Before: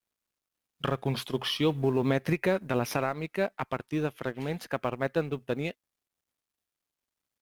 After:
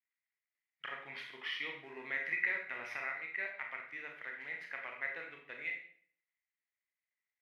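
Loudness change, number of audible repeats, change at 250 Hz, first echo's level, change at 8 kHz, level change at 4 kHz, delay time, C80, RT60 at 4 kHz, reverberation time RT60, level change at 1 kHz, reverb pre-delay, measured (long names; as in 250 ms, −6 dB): −9.0 dB, no echo audible, −28.0 dB, no echo audible, below −20 dB, −11.5 dB, no echo audible, 9.0 dB, 0.50 s, 0.55 s, −14.0 dB, 25 ms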